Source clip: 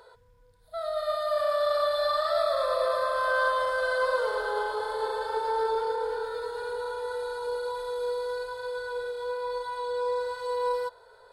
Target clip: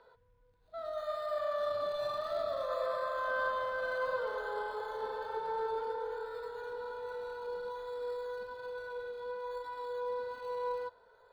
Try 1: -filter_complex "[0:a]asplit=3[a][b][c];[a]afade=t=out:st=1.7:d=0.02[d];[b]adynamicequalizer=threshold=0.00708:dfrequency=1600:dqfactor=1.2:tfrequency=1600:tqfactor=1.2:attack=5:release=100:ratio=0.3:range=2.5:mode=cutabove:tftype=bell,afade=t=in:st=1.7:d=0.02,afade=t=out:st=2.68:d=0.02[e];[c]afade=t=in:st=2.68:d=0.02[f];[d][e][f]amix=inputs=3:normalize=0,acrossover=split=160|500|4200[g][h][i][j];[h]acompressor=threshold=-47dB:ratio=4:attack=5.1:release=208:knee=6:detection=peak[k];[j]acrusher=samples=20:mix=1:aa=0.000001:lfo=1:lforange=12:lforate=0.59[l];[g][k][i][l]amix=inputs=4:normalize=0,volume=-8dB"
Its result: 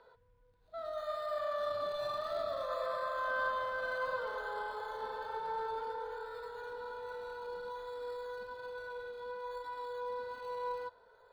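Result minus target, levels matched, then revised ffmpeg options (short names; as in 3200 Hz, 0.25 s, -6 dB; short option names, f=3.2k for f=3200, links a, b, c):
compressor: peak gain reduction +15 dB
-filter_complex "[0:a]asplit=3[a][b][c];[a]afade=t=out:st=1.7:d=0.02[d];[b]adynamicequalizer=threshold=0.00708:dfrequency=1600:dqfactor=1.2:tfrequency=1600:tqfactor=1.2:attack=5:release=100:ratio=0.3:range=2.5:mode=cutabove:tftype=bell,afade=t=in:st=1.7:d=0.02,afade=t=out:st=2.68:d=0.02[e];[c]afade=t=in:st=2.68:d=0.02[f];[d][e][f]amix=inputs=3:normalize=0,acrossover=split=160|500|4200[g][h][i][j];[j]acrusher=samples=20:mix=1:aa=0.000001:lfo=1:lforange=12:lforate=0.59[k];[g][h][i][k]amix=inputs=4:normalize=0,volume=-8dB"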